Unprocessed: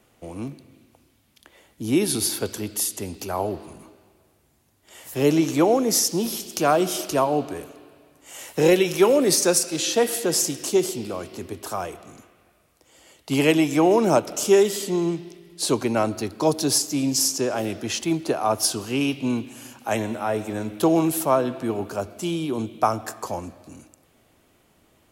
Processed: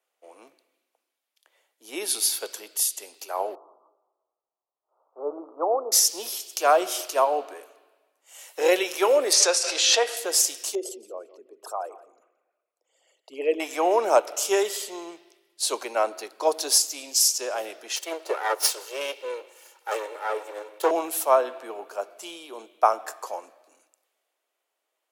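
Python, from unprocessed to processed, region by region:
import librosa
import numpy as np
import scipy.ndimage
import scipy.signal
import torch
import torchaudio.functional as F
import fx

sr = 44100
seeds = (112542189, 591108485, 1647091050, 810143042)

y = fx.chain(x, sr, fx.steep_lowpass(hz=1300.0, slope=96),
    fx.low_shelf(hz=300.0, db=-9.5), at=(3.55, 5.92))
y = fx.chain(y, sr, fx.bandpass_edges(low_hz=390.0, high_hz=5900.0),
    fx.pre_swell(db_per_s=25.0), at=(9.33, 10.17))
y = fx.chain(y, sr, fx.envelope_sharpen(power=2.0),
    fx.echo_feedback(ms=173, feedback_pct=23, wet_db=-16.5), at=(10.75, 13.6))
y = fx.chain(y, sr, fx.lower_of_two(delay_ms=2.2),
    fx.highpass(hz=310.0, slope=24),
    fx.low_shelf(hz=400.0, db=6.0), at=(17.96, 20.91))
y = scipy.signal.sosfilt(scipy.signal.butter(4, 480.0, 'highpass', fs=sr, output='sos'), y)
y = fx.band_widen(y, sr, depth_pct=40)
y = y * 10.0 ** (-1.5 / 20.0)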